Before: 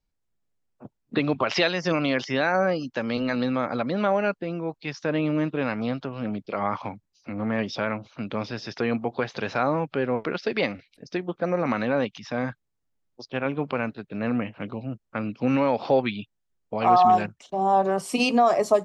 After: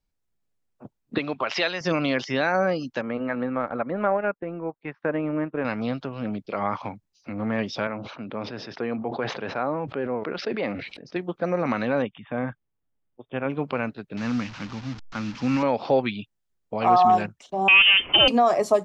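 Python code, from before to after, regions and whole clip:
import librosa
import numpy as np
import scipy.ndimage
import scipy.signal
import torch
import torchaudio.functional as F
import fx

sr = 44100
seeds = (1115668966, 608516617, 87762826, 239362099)

y = fx.chain(x, sr, fx.lowpass(hz=1500.0, slope=6),
    fx.tilt_eq(slope=3.5), at=(1.18, 1.81))
y = fx.chain(y, sr, fx.lowpass(hz=2000.0, slope=24),
    fx.low_shelf(hz=160.0, db=-10.0),
    fx.transient(attack_db=3, sustain_db=-7), at=(3.01, 5.65))
y = fx.chain(y, sr, fx.highpass(hz=260.0, slope=6),
    fx.spacing_loss(db_at_10k=32),
    fx.sustainer(db_per_s=53.0), at=(7.87, 11.16))
y = fx.chain(y, sr, fx.brickwall_lowpass(high_hz=3700.0),
    fx.high_shelf(hz=2700.0, db=-9.0), at=(12.02, 13.5))
y = fx.chain(y, sr, fx.delta_mod(bps=32000, step_db=-33.5),
    fx.band_shelf(hz=500.0, db=-9.0, octaves=1.2), at=(14.17, 15.63))
y = fx.chain(y, sr, fx.leveller(passes=3),
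    fx.freq_invert(carrier_hz=3300), at=(17.68, 18.28))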